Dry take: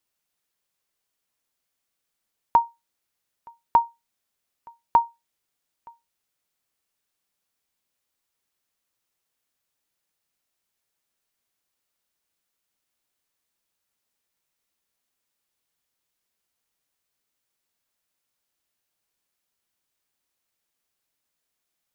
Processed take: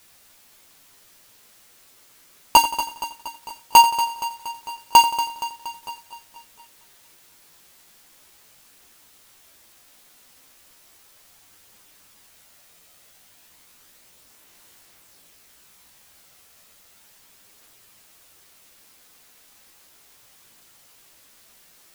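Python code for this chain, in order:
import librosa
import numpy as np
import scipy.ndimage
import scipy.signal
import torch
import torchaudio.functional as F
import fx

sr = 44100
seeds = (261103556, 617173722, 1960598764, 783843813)

p1 = fx.halfwave_hold(x, sr)
p2 = fx.quant_dither(p1, sr, seeds[0], bits=8, dither='triangular')
p3 = p1 + (p2 * 10.0 ** (-10.5 / 20.0))
p4 = fx.chorus_voices(p3, sr, voices=2, hz=0.17, base_ms=14, depth_ms=4.4, mix_pct=45)
p5 = np.clip(10.0 ** (14.5 / 20.0) * p4, -1.0, 1.0) / 10.0 ** (14.5 / 20.0)
p6 = p5 + fx.echo_feedback(p5, sr, ms=235, feedback_pct=59, wet_db=-12.5, dry=0)
p7 = fx.echo_crushed(p6, sr, ms=87, feedback_pct=55, bits=8, wet_db=-13.5)
y = p7 * 10.0 ** (7.5 / 20.0)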